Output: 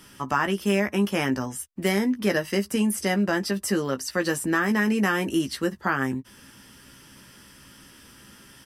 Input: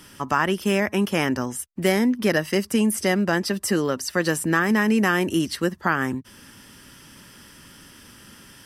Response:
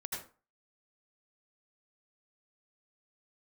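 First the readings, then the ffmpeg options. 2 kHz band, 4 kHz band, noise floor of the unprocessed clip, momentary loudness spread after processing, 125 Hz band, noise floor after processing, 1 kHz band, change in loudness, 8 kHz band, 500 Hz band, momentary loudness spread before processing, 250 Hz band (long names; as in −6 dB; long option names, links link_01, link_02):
−2.5 dB, −2.5 dB, −48 dBFS, 5 LU, −2.5 dB, −51 dBFS, −2.5 dB, −2.5 dB, −2.5 dB, −3.0 dB, 6 LU, −2.0 dB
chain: -filter_complex "[0:a]asplit=2[link_01][link_02];[link_02]adelay=15,volume=-7dB[link_03];[link_01][link_03]amix=inputs=2:normalize=0,volume=-3.5dB"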